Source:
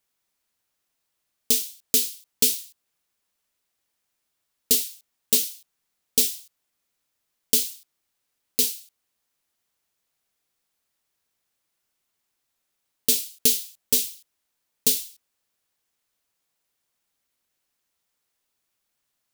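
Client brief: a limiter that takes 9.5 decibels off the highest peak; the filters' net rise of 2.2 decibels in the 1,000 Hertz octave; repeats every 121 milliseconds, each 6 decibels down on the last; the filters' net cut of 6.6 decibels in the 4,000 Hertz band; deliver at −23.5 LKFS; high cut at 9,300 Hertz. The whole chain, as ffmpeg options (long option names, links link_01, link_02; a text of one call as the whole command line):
ffmpeg -i in.wav -af "lowpass=9300,equalizer=frequency=1000:width_type=o:gain=3.5,equalizer=frequency=4000:width_type=o:gain=-8.5,alimiter=limit=-19dB:level=0:latency=1,aecho=1:1:121|242|363|484|605|726:0.501|0.251|0.125|0.0626|0.0313|0.0157,volume=10.5dB" out.wav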